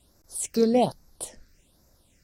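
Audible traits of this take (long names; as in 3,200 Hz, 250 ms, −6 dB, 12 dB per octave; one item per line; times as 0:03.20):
phaser sweep stages 6, 1.2 Hz, lowest notch 800–3,000 Hz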